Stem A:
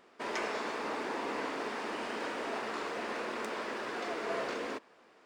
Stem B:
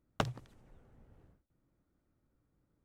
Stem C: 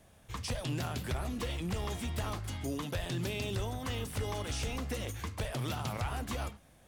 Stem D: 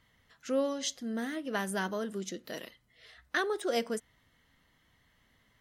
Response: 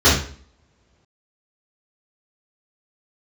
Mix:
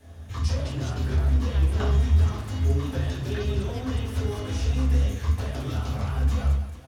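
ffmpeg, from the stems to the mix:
-filter_complex "[0:a]acompressor=threshold=-44dB:ratio=6,adelay=300,volume=-3dB[link_01];[1:a]adelay=1600,volume=-8.5dB,asplit=2[link_02][link_03];[link_03]volume=-15dB[link_04];[2:a]acompressor=threshold=-41dB:ratio=4,volume=0dB,asplit=3[link_05][link_06][link_07];[link_06]volume=-16.5dB[link_08];[link_07]volume=-4dB[link_09];[3:a]volume=-11dB,asplit=2[link_10][link_11];[link_11]apad=whole_len=303125[link_12];[link_05][link_12]sidechaincompress=threshold=-51dB:ratio=8:attack=16:release=226[link_13];[4:a]atrim=start_sample=2205[link_14];[link_04][link_08]amix=inputs=2:normalize=0[link_15];[link_15][link_14]afir=irnorm=-1:irlink=0[link_16];[link_09]aecho=0:1:221|442|663|884|1105|1326|1547:1|0.51|0.26|0.133|0.0677|0.0345|0.0176[link_17];[link_01][link_02][link_13][link_10][link_16][link_17]amix=inputs=6:normalize=0"

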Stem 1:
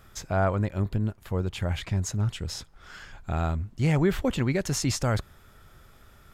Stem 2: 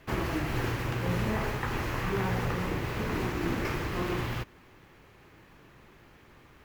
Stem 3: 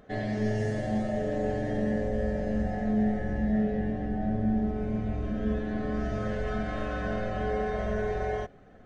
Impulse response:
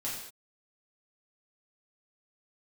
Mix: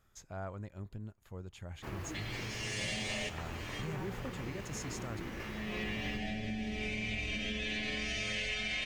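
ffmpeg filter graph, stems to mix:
-filter_complex "[0:a]equalizer=frequency=6700:width=7.6:gain=8.5,volume=-17.5dB,asplit=2[link_01][link_02];[1:a]adelay=1750,volume=-12.5dB[link_03];[2:a]equalizer=frequency=2400:width_type=o:width=0.77:gain=14.5,acompressor=threshold=-32dB:ratio=6,aexciter=amount=12.7:drive=5.7:freq=2200,adelay=2050,volume=-1.5dB[link_04];[link_02]apad=whole_len=481130[link_05];[link_04][link_05]sidechaincompress=threshold=-57dB:ratio=8:attack=16:release=545[link_06];[link_01][link_03][link_06]amix=inputs=3:normalize=0,acompressor=threshold=-33dB:ratio=10"

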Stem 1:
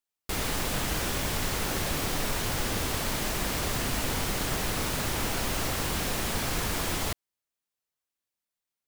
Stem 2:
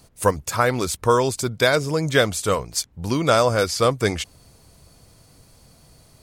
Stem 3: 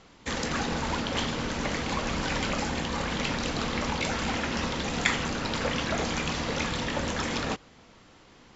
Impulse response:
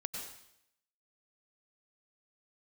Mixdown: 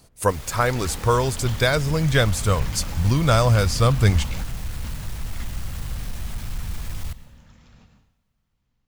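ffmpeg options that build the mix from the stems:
-filter_complex "[0:a]dynaudnorm=framelen=140:gausssize=11:maxgain=11dB,alimiter=limit=-16dB:level=0:latency=1,asoftclip=type=hard:threshold=-31.5dB,volume=-9dB,asplit=2[link_01][link_02];[link_02]volume=-11.5dB[link_03];[1:a]volume=-1.5dB,asplit=2[link_04][link_05];[2:a]adelay=300,volume=-9dB,asplit=2[link_06][link_07];[link_07]volume=-19.5dB[link_08];[link_05]apad=whole_len=390443[link_09];[link_06][link_09]sidechaingate=range=-33dB:threshold=-49dB:ratio=16:detection=peak[link_10];[3:a]atrim=start_sample=2205[link_11];[link_03][link_08]amix=inputs=2:normalize=0[link_12];[link_12][link_11]afir=irnorm=-1:irlink=0[link_13];[link_01][link_04][link_10][link_13]amix=inputs=4:normalize=0,asubboost=boost=9.5:cutoff=120"

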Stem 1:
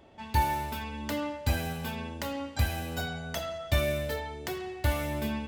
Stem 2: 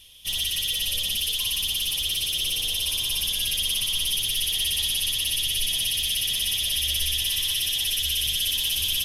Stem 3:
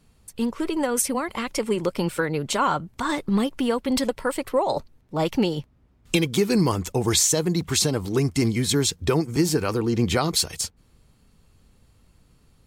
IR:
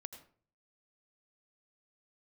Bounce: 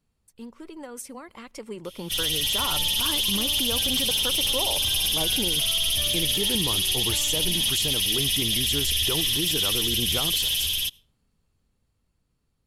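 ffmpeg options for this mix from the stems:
-filter_complex "[0:a]adelay=2250,volume=-18dB[link_01];[1:a]alimiter=limit=-20.5dB:level=0:latency=1:release=16,adelay=1850,volume=-3.5dB,asplit=2[link_02][link_03];[link_03]volume=-12.5dB[link_04];[2:a]volume=-16.5dB,asplit=2[link_05][link_06];[link_06]volume=-18.5dB[link_07];[3:a]atrim=start_sample=2205[link_08];[link_04][link_07]amix=inputs=2:normalize=0[link_09];[link_09][link_08]afir=irnorm=-1:irlink=0[link_10];[link_01][link_02][link_05][link_10]amix=inputs=4:normalize=0,dynaudnorm=framelen=240:gausssize=21:maxgain=11.5dB,alimiter=limit=-15dB:level=0:latency=1"

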